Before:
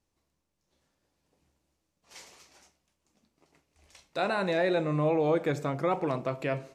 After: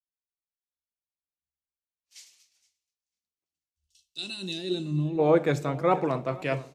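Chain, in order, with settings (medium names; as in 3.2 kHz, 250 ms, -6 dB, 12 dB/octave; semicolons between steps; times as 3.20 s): time-frequency box 3.52–5.18 s, 390–2600 Hz -20 dB; feedback delay 483 ms, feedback 43%, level -16.5 dB; three bands expanded up and down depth 100%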